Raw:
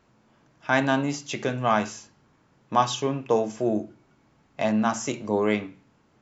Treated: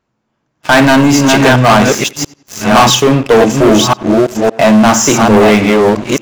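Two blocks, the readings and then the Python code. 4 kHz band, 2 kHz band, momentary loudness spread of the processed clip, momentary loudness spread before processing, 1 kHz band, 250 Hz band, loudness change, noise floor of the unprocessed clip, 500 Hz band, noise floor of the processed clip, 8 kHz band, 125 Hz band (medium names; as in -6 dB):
+22.0 dB, +18.0 dB, 7 LU, 9 LU, +16.0 dB, +19.0 dB, +17.5 dB, -64 dBFS, +18.0 dB, -67 dBFS, no reading, +19.5 dB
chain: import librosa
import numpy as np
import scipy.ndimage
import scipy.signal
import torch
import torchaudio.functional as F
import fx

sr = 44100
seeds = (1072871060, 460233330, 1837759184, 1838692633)

y = fx.reverse_delay(x, sr, ms=562, wet_db=-4)
y = fx.leveller(y, sr, passes=5)
y = fx.echo_tape(y, sr, ms=93, feedback_pct=35, wet_db=-20, lp_hz=4000.0, drive_db=3.0, wow_cents=30)
y = y * librosa.db_to_amplitude(4.0)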